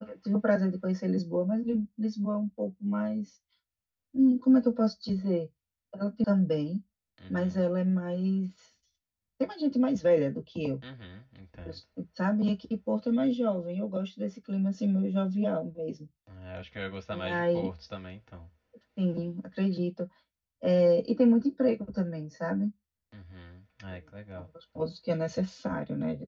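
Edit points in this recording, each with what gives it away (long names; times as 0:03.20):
0:06.24: cut off before it has died away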